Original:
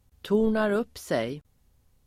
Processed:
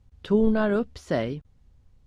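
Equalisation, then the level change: air absorption 81 m; low shelf 180 Hz +8.5 dB; 0.0 dB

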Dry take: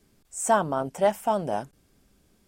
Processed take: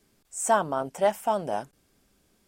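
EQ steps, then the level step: low shelf 270 Hz -6.5 dB; 0.0 dB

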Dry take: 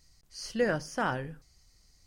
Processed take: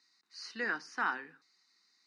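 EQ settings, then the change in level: Bessel high-pass 410 Hz, order 8; synth low-pass 3700 Hz, resonance Q 13; fixed phaser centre 1400 Hz, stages 4; 0.0 dB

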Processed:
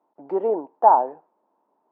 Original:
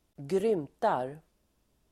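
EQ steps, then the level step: HPF 270 Hz 24 dB/oct; synth low-pass 910 Hz, resonance Q 5.9; +3.0 dB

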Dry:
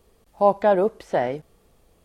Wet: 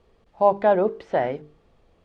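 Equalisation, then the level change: LPF 3600 Hz 12 dB/oct; notches 50/100/150/200/250/300/350/400/450 Hz; 0.0 dB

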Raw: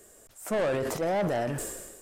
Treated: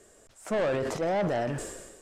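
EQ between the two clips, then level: LPF 7000 Hz 12 dB/oct; 0.0 dB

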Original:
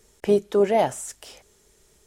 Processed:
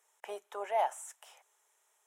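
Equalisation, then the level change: ladder high-pass 710 Hz, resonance 45%; bell 4600 Hz -14 dB 0.43 oct; -1.5 dB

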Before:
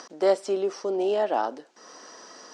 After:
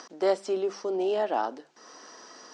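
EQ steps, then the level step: LPF 7900 Hz 12 dB/oct; bell 550 Hz -3 dB 0.44 oct; notches 50/100/150/200 Hz; -1.5 dB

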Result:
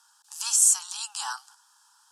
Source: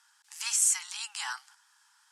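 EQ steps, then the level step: fixed phaser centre 870 Hz, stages 4; +6.5 dB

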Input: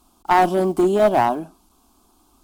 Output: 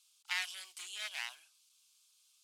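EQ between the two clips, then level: ladder band-pass 2800 Hz, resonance 35%; differentiator; high shelf 2400 Hz +9 dB; +8.0 dB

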